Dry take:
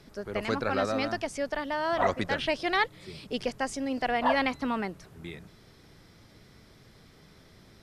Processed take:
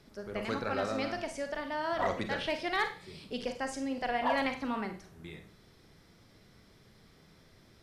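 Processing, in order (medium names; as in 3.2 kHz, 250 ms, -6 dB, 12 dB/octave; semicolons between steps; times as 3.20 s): overload inside the chain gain 16 dB; Schroeder reverb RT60 0.38 s, combs from 33 ms, DRR 6 dB; trim -5.5 dB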